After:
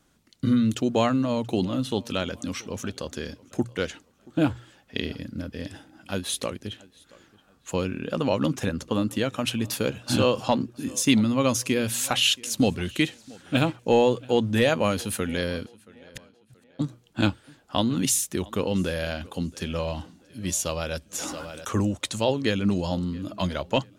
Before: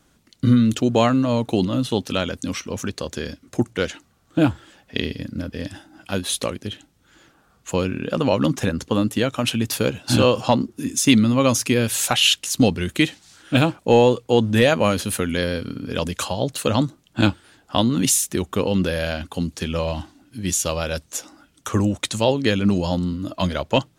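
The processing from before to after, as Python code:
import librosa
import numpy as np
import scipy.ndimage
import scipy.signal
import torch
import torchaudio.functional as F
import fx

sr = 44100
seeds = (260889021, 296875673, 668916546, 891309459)

y = fx.hum_notches(x, sr, base_hz=60, count=2)
y = fx.over_compress(y, sr, threshold_db=-49.0, ratio=-0.5, at=(15.65, 16.79), fade=0.02)
y = fx.echo_tape(y, sr, ms=678, feedback_pct=38, wet_db=-22.5, lp_hz=5600.0, drive_db=1.0, wow_cents=17)
y = fx.sustainer(y, sr, db_per_s=23.0, at=(21.17, 21.82), fade=0.02)
y = y * 10.0 ** (-5.0 / 20.0)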